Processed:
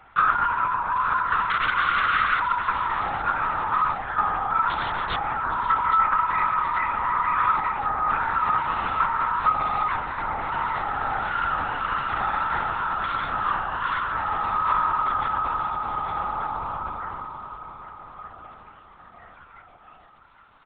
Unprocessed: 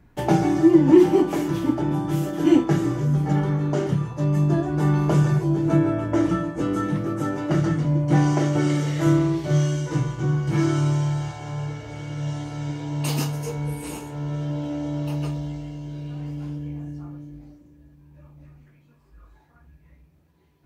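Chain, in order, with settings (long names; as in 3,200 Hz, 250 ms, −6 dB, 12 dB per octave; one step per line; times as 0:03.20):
downward compressor 2.5 to 1, threshold −27 dBFS, peak gain reduction 12.5 dB
brickwall limiter −23.5 dBFS, peak gain reduction 9.5 dB
ring modulation 660 Hz
0:01.50–0:02.40: wrap-around overflow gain 29 dB
high-pass with resonance 1,300 Hz, resonance Q 8.4
0:04.70–0:05.19: wrap-around overflow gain 26.5 dB
surface crackle 97 per second −50 dBFS
repeating echo 818 ms, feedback 45%, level −11 dB
linear-prediction vocoder at 8 kHz whisper
level +7.5 dB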